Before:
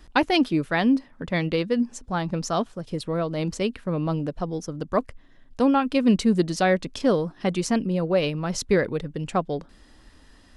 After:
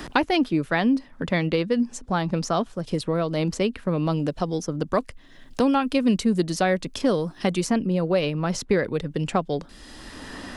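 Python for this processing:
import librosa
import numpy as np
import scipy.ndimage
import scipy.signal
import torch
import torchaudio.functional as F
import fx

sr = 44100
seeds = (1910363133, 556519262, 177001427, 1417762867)

y = fx.high_shelf(x, sr, hz=9900.0, db=10.5, at=(5.66, 7.73))
y = fx.band_squash(y, sr, depth_pct=70)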